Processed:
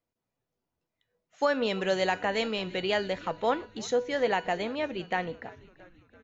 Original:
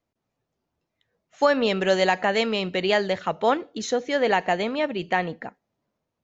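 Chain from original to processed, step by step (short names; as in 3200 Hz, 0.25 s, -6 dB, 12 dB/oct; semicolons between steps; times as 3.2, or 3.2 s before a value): resonator 490 Hz, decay 0.4 s, mix 70%; on a send: frequency-shifting echo 0.337 s, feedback 62%, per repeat -92 Hz, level -21 dB; on the sum: gain +3.5 dB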